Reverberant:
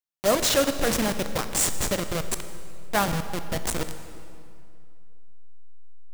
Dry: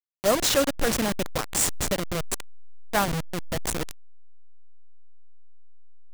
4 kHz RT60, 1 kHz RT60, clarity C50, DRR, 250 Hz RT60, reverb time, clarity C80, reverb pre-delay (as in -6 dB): 1.9 s, 2.4 s, 10.0 dB, 9.0 dB, 2.5 s, 2.4 s, 11.0 dB, 15 ms